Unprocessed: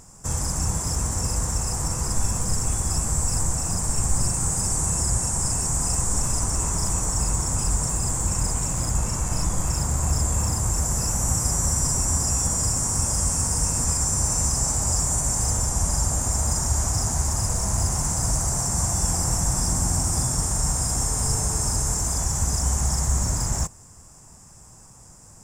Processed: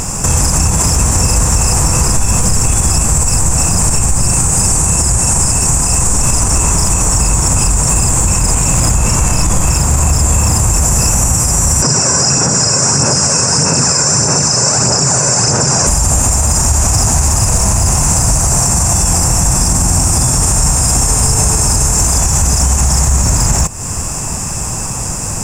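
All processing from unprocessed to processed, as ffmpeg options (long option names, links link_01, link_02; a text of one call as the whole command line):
ffmpeg -i in.wav -filter_complex "[0:a]asettb=1/sr,asplit=3[link_01][link_02][link_03];[link_01]atrim=end=11.824[link_04];[link_02]atrim=start=11.82:end=15.87,asetpts=PTS-STARTPTS,afade=type=in:duration=0.004:curve=qsin,afade=type=out:start_time=4.046:duration=0.004:curve=qsin,aphaser=in_gain=1:out_gain=1:delay=2:decay=0.39:speed=1.6:type=sinusoidal,highpass=frequency=130:width=0.5412,highpass=frequency=130:width=1.3066,equalizer=frequency=130:width_type=q:width=4:gain=4,equalizer=frequency=400:width_type=q:width=4:gain=7,equalizer=frequency=560:width_type=q:width=4:gain=4,equalizer=frequency=1500:width_type=q:width=4:gain=7,equalizer=frequency=3300:width_type=q:width=4:gain=-8,equalizer=frequency=5100:width_type=q:width=4:gain=9,lowpass=frequency=7500:width=0.5412,lowpass=frequency=7500:width=1.3066[link_05];[link_03]atrim=start=15.866[link_06];[link_04][link_05]acrossfade=duration=0.004:curve1=hsin:curve2=qsin[link_07];[link_07][link_06]acrossfade=duration=0.004:curve1=qsin:curve2=hsin,equalizer=frequency=2600:width=6.4:gain=9.5,acompressor=threshold=-34dB:ratio=6,alimiter=level_in=30dB:limit=-1dB:release=50:level=0:latency=1,volume=-1dB" out.wav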